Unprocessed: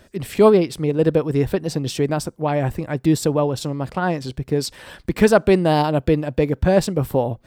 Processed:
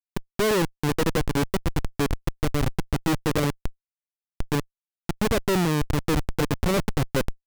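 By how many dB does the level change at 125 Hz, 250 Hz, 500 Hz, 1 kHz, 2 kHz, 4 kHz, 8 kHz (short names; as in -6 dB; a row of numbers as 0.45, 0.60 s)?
-5.0, -6.5, -10.0, -6.5, -2.0, -1.5, -2.0 dB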